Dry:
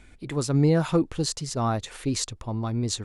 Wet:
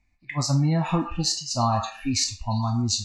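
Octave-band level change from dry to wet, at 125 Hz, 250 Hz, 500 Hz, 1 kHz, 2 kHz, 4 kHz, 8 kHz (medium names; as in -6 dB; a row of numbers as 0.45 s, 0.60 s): +1.5 dB, -1.0 dB, -5.5 dB, +5.5 dB, +1.5 dB, +6.5 dB, +4.5 dB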